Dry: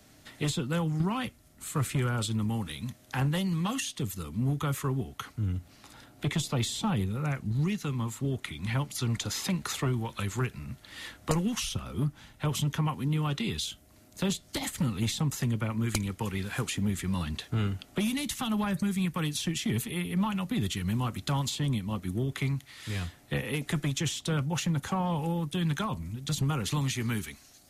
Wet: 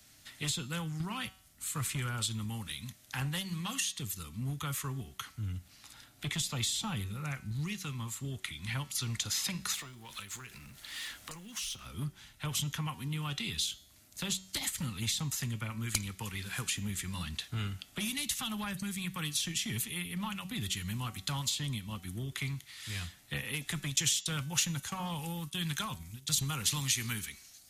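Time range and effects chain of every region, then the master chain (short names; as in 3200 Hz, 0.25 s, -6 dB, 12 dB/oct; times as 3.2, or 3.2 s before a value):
9.74–11.86 G.711 law mismatch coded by mu + compressor 4:1, threshold -36 dBFS + bell 90 Hz -8.5 dB 1.7 oct
23.96–27.13 expander -35 dBFS + high shelf 3400 Hz +6.5 dB
whole clip: passive tone stack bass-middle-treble 5-5-5; de-hum 188.9 Hz, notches 40; gain +8 dB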